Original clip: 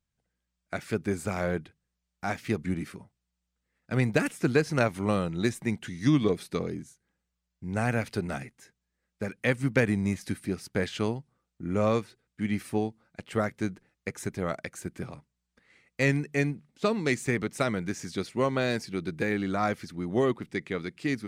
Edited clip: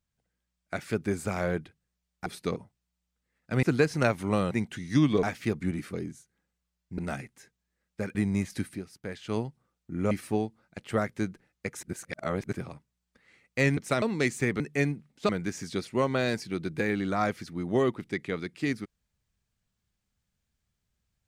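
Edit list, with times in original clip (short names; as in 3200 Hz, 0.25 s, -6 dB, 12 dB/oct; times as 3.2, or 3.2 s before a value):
2.26–2.96 swap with 6.34–6.64
4.03–4.39 cut
5.27–5.62 cut
7.69–8.2 cut
9.37–9.86 cut
10.4–11.09 dip -9.5 dB, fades 0.13 s
11.82–12.53 cut
14.25–14.95 reverse
16.19–16.88 swap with 17.46–17.71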